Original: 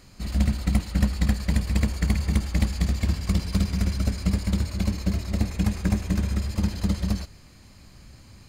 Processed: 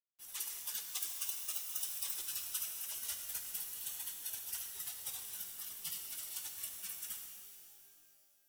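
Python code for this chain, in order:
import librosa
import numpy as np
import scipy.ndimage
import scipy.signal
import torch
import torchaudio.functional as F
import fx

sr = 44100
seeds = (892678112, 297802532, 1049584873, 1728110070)

y = fx.median_filter(x, sr, points=3, at=(0.88, 2.15))
y = fx.spec_gate(y, sr, threshold_db=-15, keep='weak')
y = fx.notch(y, sr, hz=2900.0, q=21.0)
y = fx.spec_gate(y, sr, threshold_db=-30, keep='weak')
y = fx.small_body(y, sr, hz=(400.0, 610.0, 3800.0), ring_ms=25, db=11, at=(4.72, 5.26))
y = fx.quant_dither(y, sr, seeds[0], bits=12, dither='none')
y = fx.rev_shimmer(y, sr, seeds[1], rt60_s=2.5, semitones=12, shimmer_db=-2, drr_db=4.0)
y = F.gain(torch.from_numpy(y), 14.0).numpy()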